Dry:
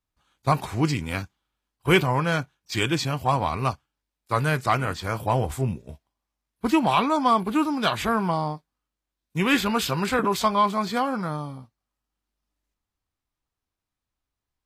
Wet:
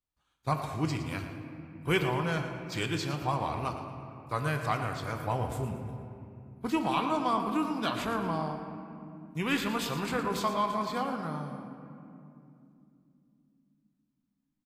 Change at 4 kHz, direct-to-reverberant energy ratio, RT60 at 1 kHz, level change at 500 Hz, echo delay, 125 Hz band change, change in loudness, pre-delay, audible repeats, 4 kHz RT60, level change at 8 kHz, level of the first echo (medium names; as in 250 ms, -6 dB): -8.0 dB, 4.5 dB, 2.4 s, -7.0 dB, 114 ms, -7.0 dB, -8.0 dB, 6 ms, 2, 1.5 s, -8.5 dB, -11.0 dB